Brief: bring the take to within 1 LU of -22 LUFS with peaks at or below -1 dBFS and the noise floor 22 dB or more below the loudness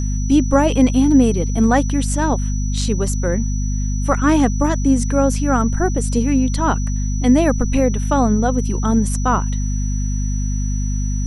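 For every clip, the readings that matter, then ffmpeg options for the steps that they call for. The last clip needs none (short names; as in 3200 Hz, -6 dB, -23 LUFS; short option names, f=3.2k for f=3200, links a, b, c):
hum 50 Hz; harmonics up to 250 Hz; hum level -17 dBFS; steady tone 5900 Hz; tone level -33 dBFS; loudness -18.0 LUFS; peak -1.0 dBFS; loudness target -22.0 LUFS
-> -af "bandreject=f=50:t=h:w=6,bandreject=f=100:t=h:w=6,bandreject=f=150:t=h:w=6,bandreject=f=200:t=h:w=6,bandreject=f=250:t=h:w=6"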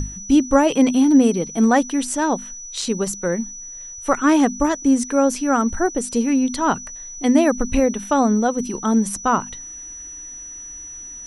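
hum none; steady tone 5900 Hz; tone level -33 dBFS
-> -af "bandreject=f=5.9k:w=30"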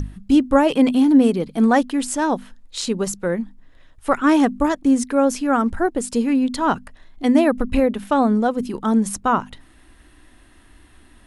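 steady tone none; loudness -19.0 LUFS; peak -3.5 dBFS; loudness target -22.0 LUFS
-> -af "volume=-3dB"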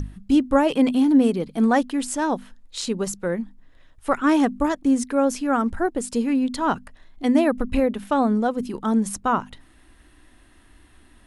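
loudness -22.0 LUFS; peak -6.5 dBFS; noise floor -53 dBFS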